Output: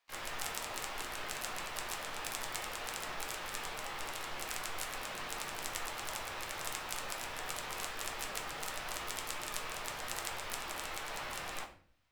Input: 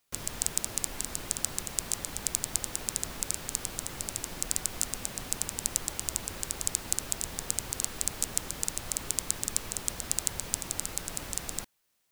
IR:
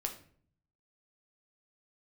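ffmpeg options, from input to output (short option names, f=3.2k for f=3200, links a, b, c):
-filter_complex "[0:a]acrossover=split=490 3400:gain=0.158 1 0.112[a][b][c];[a][b][c]amix=inputs=3:normalize=0,asplit=3[d][e][f];[e]asetrate=66075,aresample=44100,atempo=0.66742,volume=-4dB[g];[f]asetrate=88200,aresample=44100,atempo=0.5,volume=-11dB[h];[d][g][h]amix=inputs=3:normalize=0[i];[1:a]atrim=start_sample=2205[j];[i][j]afir=irnorm=-1:irlink=0,volume=2.5dB"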